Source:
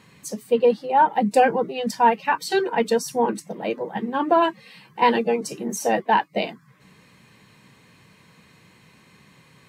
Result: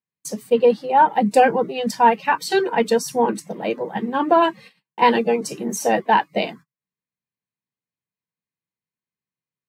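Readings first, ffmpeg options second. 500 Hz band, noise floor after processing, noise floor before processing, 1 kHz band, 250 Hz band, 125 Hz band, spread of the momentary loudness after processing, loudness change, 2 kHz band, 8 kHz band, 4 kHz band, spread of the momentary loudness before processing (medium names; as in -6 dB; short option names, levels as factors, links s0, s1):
+2.5 dB, under -85 dBFS, -55 dBFS, +2.5 dB, +2.5 dB, +2.5 dB, 10 LU, +2.5 dB, +2.5 dB, +2.5 dB, +2.5 dB, 10 LU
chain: -af "agate=range=0.00501:threshold=0.00794:ratio=16:detection=peak,volume=1.33"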